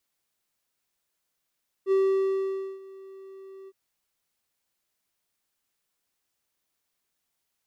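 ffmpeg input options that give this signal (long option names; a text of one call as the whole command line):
ffmpeg -f lavfi -i "aevalsrc='0.15*(1-4*abs(mod(386*t+0.25,1)-0.5))':duration=1.862:sample_rate=44100,afade=type=in:duration=0.056,afade=type=out:start_time=0.056:duration=0.874:silence=0.0668,afade=type=out:start_time=1.82:duration=0.042" out.wav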